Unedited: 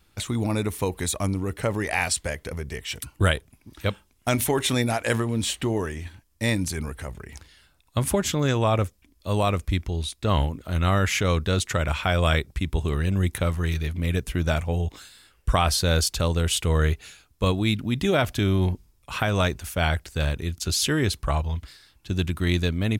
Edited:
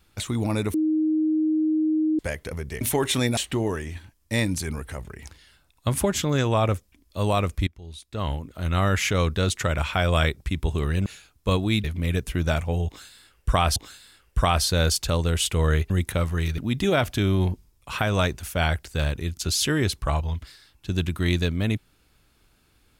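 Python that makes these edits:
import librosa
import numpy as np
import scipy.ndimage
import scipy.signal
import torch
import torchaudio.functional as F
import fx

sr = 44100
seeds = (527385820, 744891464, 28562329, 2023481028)

y = fx.edit(x, sr, fx.bleep(start_s=0.74, length_s=1.45, hz=312.0, db=-19.0),
    fx.cut(start_s=2.81, length_s=1.55),
    fx.cut(start_s=4.92, length_s=0.55),
    fx.fade_in_from(start_s=9.77, length_s=1.26, floor_db=-22.0),
    fx.swap(start_s=13.16, length_s=0.68, other_s=17.01, other_length_s=0.78),
    fx.repeat(start_s=14.87, length_s=0.89, count=2), tone=tone)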